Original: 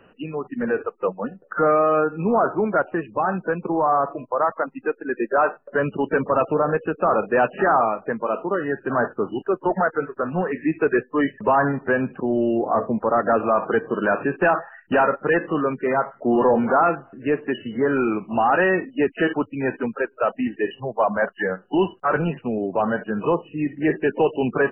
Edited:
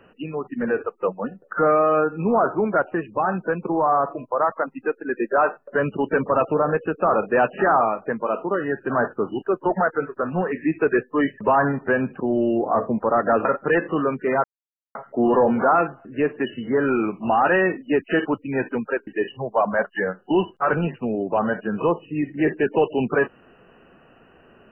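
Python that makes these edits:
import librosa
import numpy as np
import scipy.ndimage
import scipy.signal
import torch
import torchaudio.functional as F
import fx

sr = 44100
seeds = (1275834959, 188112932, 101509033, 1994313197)

y = fx.edit(x, sr, fx.cut(start_s=13.45, length_s=1.59),
    fx.insert_silence(at_s=16.03, length_s=0.51),
    fx.cut(start_s=20.15, length_s=0.35), tone=tone)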